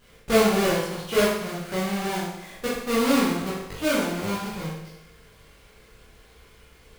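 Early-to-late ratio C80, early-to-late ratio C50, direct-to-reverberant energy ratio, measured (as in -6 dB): 4.0 dB, 1.0 dB, -8.5 dB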